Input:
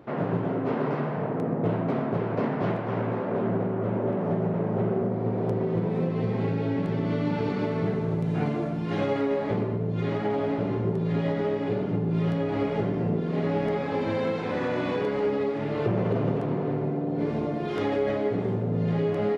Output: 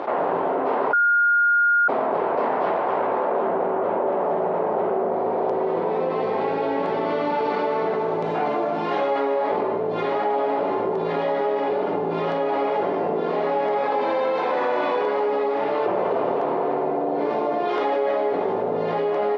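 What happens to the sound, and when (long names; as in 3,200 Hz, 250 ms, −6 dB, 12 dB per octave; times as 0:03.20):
0:00.93–0:01.88: beep over 1,420 Hz −11 dBFS
whole clip: Chebyshev band-pass filter 420–4,800 Hz, order 2; parametric band 890 Hz +10.5 dB 1.2 octaves; envelope flattener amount 70%; level −7.5 dB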